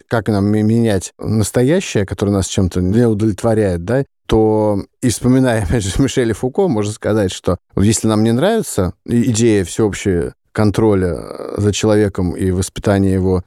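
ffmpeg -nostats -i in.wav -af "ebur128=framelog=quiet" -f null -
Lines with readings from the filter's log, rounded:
Integrated loudness:
  I:         -15.6 LUFS
  Threshold: -25.6 LUFS
Loudness range:
  LRA:         0.9 LU
  Threshold: -35.6 LUFS
  LRA low:   -16.1 LUFS
  LRA high:  -15.2 LUFS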